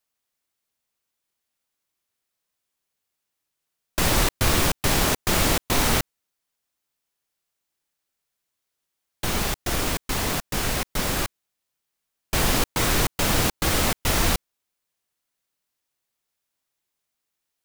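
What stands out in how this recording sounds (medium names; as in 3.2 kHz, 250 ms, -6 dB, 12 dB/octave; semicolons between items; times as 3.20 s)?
noise floor -82 dBFS; spectral tilt -3.0 dB/octave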